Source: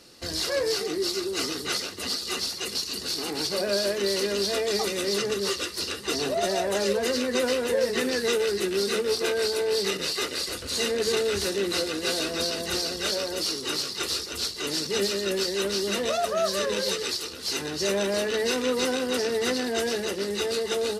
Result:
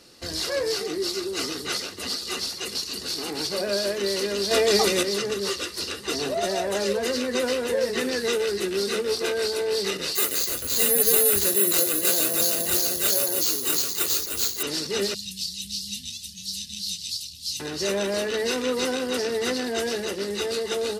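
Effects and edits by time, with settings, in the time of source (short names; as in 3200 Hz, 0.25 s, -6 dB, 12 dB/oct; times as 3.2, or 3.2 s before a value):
4.51–5.03 gain +6.5 dB
10.15–14.63 careless resampling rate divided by 4×, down filtered, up zero stuff
15.14–17.6 inverse Chebyshev band-stop 480–1200 Hz, stop band 70 dB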